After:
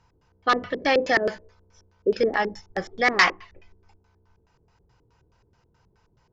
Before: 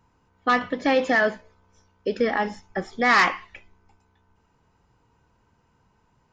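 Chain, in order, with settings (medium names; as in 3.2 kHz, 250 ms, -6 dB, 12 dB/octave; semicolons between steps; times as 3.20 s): graphic EQ 250/1000/4000 Hz -10/-3/-4 dB; LFO low-pass square 4.7 Hz 370–5100 Hz; trim +3 dB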